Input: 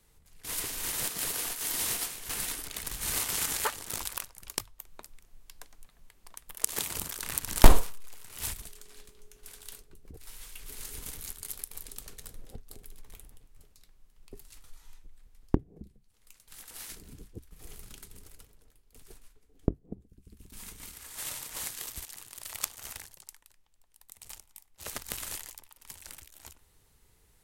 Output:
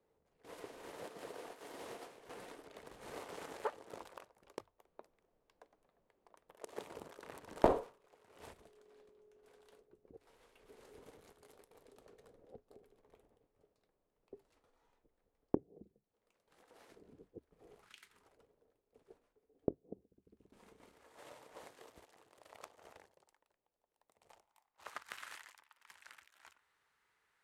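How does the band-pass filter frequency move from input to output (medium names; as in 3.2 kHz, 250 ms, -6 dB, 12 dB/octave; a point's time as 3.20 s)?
band-pass filter, Q 1.7
17.74 s 510 Hz
17.97 s 2.6 kHz
18.39 s 520 Hz
24.20 s 520 Hz
25.14 s 1.5 kHz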